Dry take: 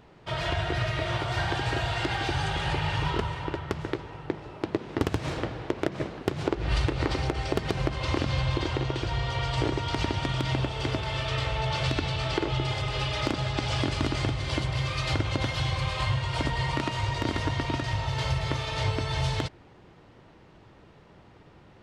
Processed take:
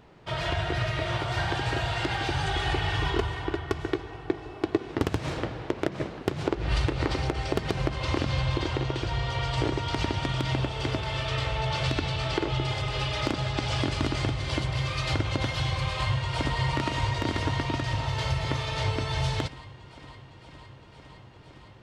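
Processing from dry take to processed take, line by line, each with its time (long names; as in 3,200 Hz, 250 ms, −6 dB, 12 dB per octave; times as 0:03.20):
0:02.47–0:04.92: comb filter 2.7 ms
0:15.91–0:16.58: delay throw 510 ms, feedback 80%, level −8 dB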